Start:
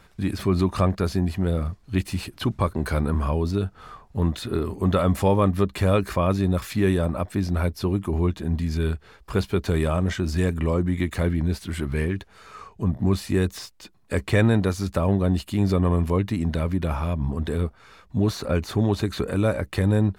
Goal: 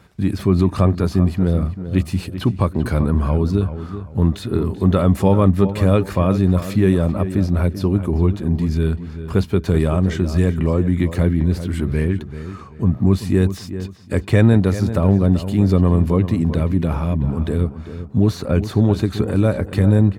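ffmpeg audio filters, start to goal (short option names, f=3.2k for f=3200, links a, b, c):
-filter_complex "[0:a]highpass=77,lowshelf=f=410:g=8.5,asplit=2[a][b];[b]adelay=387,lowpass=f=2.8k:p=1,volume=-11.5dB,asplit=2[c][d];[d]adelay=387,lowpass=f=2.8k:p=1,volume=0.31,asplit=2[e][f];[f]adelay=387,lowpass=f=2.8k:p=1,volume=0.31[g];[c][e][g]amix=inputs=3:normalize=0[h];[a][h]amix=inputs=2:normalize=0"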